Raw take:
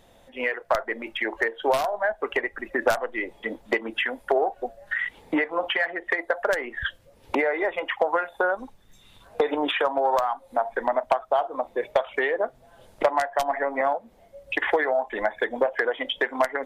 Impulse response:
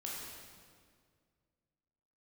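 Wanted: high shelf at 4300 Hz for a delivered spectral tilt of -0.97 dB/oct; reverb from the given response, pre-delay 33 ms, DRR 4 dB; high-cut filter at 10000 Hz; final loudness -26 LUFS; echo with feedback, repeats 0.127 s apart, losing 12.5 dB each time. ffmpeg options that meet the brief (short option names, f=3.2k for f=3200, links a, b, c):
-filter_complex "[0:a]lowpass=10k,highshelf=f=4.3k:g=-9,aecho=1:1:127|254|381:0.237|0.0569|0.0137,asplit=2[a][b];[1:a]atrim=start_sample=2205,adelay=33[c];[b][c]afir=irnorm=-1:irlink=0,volume=-4dB[d];[a][d]amix=inputs=2:normalize=0,volume=-1dB"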